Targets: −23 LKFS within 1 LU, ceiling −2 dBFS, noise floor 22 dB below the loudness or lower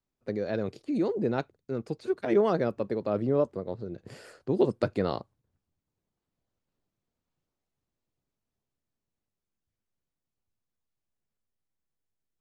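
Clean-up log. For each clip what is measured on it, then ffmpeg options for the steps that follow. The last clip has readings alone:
integrated loudness −29.5 LKFS; sample peak −12.0 dBFS; target loudness −23.0 LKFS
→ -af "volume=6.5dB"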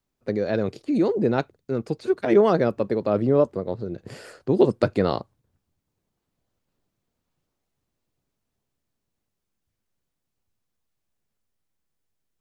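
integrated loudness −23.0 LKFS; sample peak −5.5 dBFS; background noise floor −81 dBFS

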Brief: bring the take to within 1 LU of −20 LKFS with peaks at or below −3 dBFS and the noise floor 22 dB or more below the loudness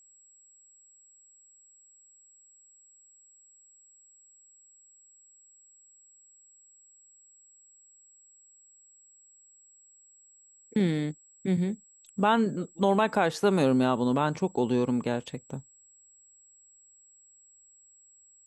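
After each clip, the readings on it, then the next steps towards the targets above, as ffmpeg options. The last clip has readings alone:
interfering tone 7,700 Hz; level of the tone −56 dBFS; integrated loudness −27.5 LKFS; sample peak −11.5 dBFS; target loudness −20.0 LKFS
→ -af "bandreject=frequency=7700:width=30"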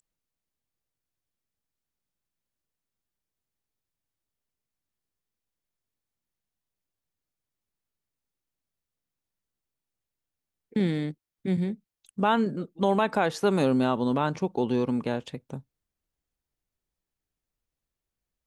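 interfering tone none found; integrated loudness −27.0 LKFS; sample peak −11.5 dBFS; target loudness −20.0 LKFS
→ -af "volume=7dB"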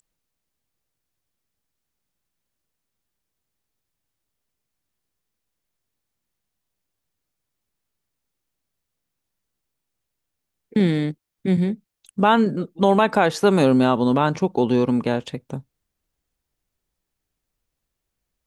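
integrated loudness −20.0 LKFS; sample peak −4.5 dBFS; background noise floor −81 dBFS

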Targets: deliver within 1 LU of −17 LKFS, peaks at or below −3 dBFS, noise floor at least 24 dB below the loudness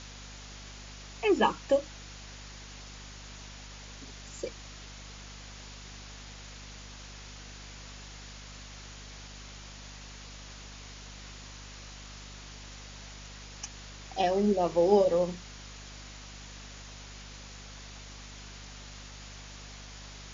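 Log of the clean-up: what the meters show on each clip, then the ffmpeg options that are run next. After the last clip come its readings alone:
mains hum 50 Hz; hum harmonics up to 250 Hz; level of the hum −46 dBFS; background noise floor −47 dBFS; target noise floor −59 dBFS; integrated loudness −35.0 LKFS; sample peak −10.5 dBFS; target loudness −17.0 LKFS
→ -af "bandreject=frequency=50:width_type=h:width=6,bandreject=frequency=100:width_type=h:width=6,bandreject=frequency=150:width_type=h:width=6,bandreject=frequency=200:width_type=h:width=6,bandreject=frequency=250:width_type=h:width=6"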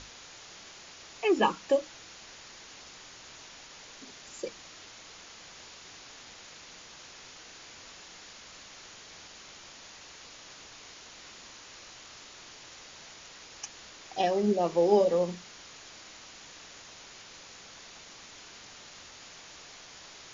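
mains hum none found; background noise floor −50 dBFS; target noise floor −53 dBFS
→ -af "afftdn=noise_reduction=6:noise_floor=-50"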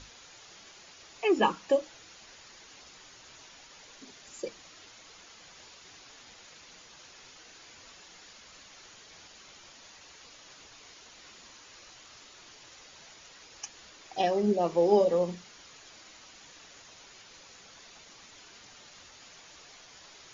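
background noise floor −53 dBFS; integrated loudness −28.5 LKFS; sample peak −11.0 dBFS; target loudness −17.0 LKFS
→ -af "volume=11.5dB,alimiter=limit=-3dB:level=0:latency=1"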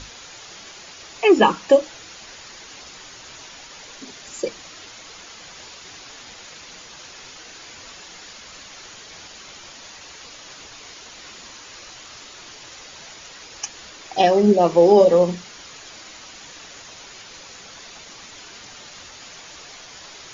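integrated loudness −17.5 LKFS; sample peak −3.0 dBFS; background noise floor −42 dBFS

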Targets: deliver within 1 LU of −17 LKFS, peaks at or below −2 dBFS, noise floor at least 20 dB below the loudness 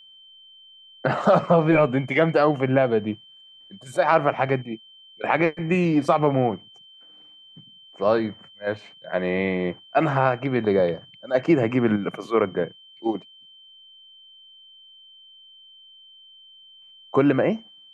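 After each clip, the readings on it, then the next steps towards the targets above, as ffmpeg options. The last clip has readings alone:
interfering tone 3,100 Hz; level of the tone −47 dBFS; integrated loudness −22.5 LKFS; sample peak −6.0 dBFS; target loudness −17.0 LKFS
→ -af "bandreject=frequency=3100:width=30"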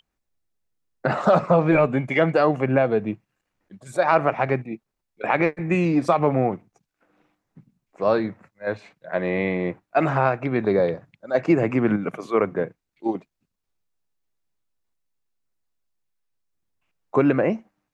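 interfering tone none found; integrated loudness −22.5 LKFS; sample peak −5.5 dBFS; target loudness −17.0 LKFS
→ -af "volume=5.5dB,alimiter=limit=-2dB:level=0:latency=1"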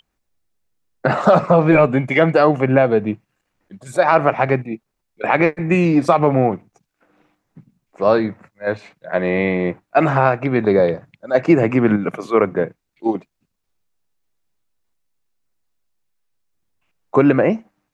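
integrated loudness −17.0 LKFS; sample peak −2.0 dBFS; background noise floor −75 dBFS

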